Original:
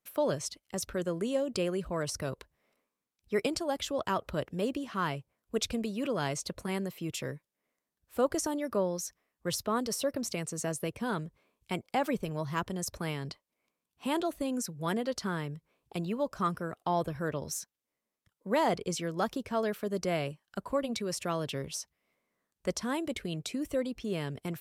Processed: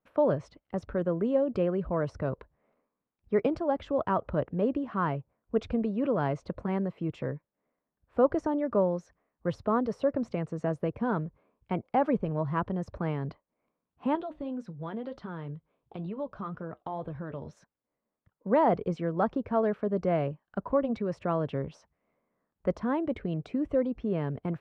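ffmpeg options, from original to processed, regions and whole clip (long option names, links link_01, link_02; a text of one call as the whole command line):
ffmpeg -i in.wav -filter_complex "[0:a]asettb=1/sr,asplit=3[link_01][link_02][link_03];[link_01]atrim=end=14.154[link_04];[link_02]atrim=start=14.15:end=17.57,asetpts=PTS-STARTPTS,afade=type=in:duration=0.004:curve=qsin,afade=type=out:start_time=3.416:duration=0.004:curve=qsin,equalizer=frequency=3500:width_type=o:width=0.65:gain=9.5,acompressor=threshold=-33dB:ratio=2.5:attack=3.2:release=140:knee=1:detection=peak,flanger=delay=6.4:depth=2:regen=-69:speed=2:shape=sinusoidal[link_05];[link_03]atrim=start=17.566[link_06];[link_04][link_05]acrossfade=duration=0.004:curve1=hsin:curve2=qsin[link_07];[link_07][link_06]acrossfade=duration=0.004:curve1=qsin:curve2=hsin,lowpass=1200,equalizer=frequency=370:width=7.1:gain=-3.5,volume=5dB" out.wav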